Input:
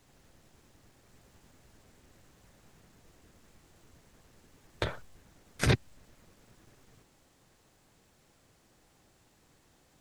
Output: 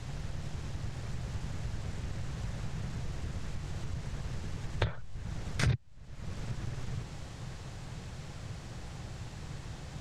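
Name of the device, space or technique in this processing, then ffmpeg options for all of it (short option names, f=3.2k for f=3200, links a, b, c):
jukebox: -af "lowpass=6.4k,lowshelf=f=190:t=q:w=1.5:g=9,acompressor=threshold=-49dB:ratio=5,volume=17.5dB"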